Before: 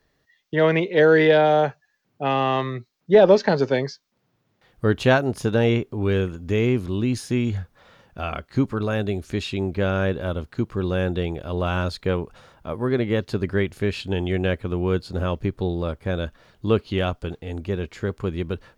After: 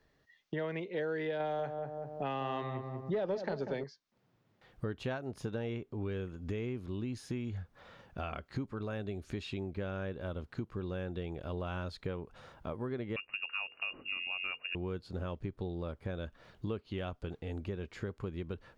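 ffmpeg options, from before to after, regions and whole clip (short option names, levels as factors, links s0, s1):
-filter_complex "[0:a]asettb=1/sr,asplit=3[s0][s1][s2];[s0]atrim=end=1.404[s3];[s1]atrim=start=1.4:end=3.84,asetpts=PTS-STARTPTS,afade=t=in:d=0.004:c=qsin,afade=t=out:st=2.436:d=0.004:c=qsin,acontrast=33,asplit=2[s4][s5];[s5]adelay=192,lowpass=f=900:p=1,volume=0.422,asplit=2[s6][s7];[s7]adelay=192,lowpass=f=900:p=1,volume=0.41,asplit=2[s8][s9];[s9]adelay=192,lowpass=f=900:p=1,volume=0.41,asplit=2[s10][s11];[s11]adelay=192,lowpass=f=900:p=1,volume=0.41,asplit=2[s12][s13];[s13]adelay=192,lowpass=f=900:p=1,volume=0.41[s14];[s4][s6][s8][s10][s12][s14]amix=inputs=6:normalize=0,atrim=end_sample=107604[s15];[s2]atrim=start=3.836[s16];[s3][s15]acrossfade=d=0.004:c1=hsin:c2=qsin[s17];[s17][s16]acrossfade=d=0.004:c1=qsin:c2=hsin,asettb=1/sr,asplit=3[s18][s19][s20];[s18]atrim=end=13.164[s21];[s19]atrim=start=13.16:end=14.75,asetpts=PTS-STARTPTS,afade=t=in:d=0.004:c=qsin,afade=t=out:st=1.586:d=0.004:c=qsin,lowpass=f=2500:t=q:w=0.5098,lowpass=f=2500:t=q:w=0.6013,lowpass=f=2500:t=q:w=0.9,lowpass=f=2500:t=q:w=2.563,afreqshift=-2900,bandreject=f=50:t=h:w=6,bandreject=f=100:t=h:w=6,bandreject=f=150:t=h:w=6,bandreject=f=200:t=h:w=6,bandreject=f=250:t=h:w=6,bandreject=f=300:t=h:w=6,bandreject=f=350:t=h:w=6,bandreject=f=400:t=h:w=6,bandreject=f=450:t=h:w=6,bandreject=f=500:t=h:w=6[s22];[s20]atrim=start=14.746[s23];[s21][s22]acrossfade=d=0.004:c1=hsin:c2=qsin[s24];[s24][s23]acrossfade=d=0.004:c1=qsin:c2=hsin,highshelf=f=5800:g=-8,acompressor=threshold=0.02:ratio=4,volume=0.708"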